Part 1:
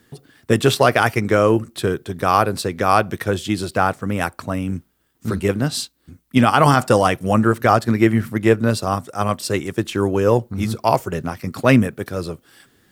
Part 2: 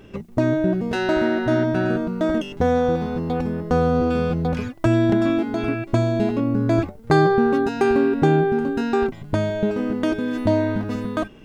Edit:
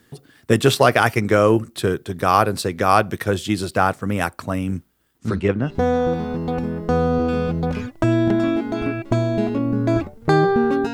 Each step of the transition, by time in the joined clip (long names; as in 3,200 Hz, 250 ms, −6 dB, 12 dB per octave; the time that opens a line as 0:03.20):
part 1
0:05.18–0:05.79: low-pass filter 10,000 Hz → 1,100 Hz
0:05.69: continue with part 2 from 0:02.51, crossfade 0.20 s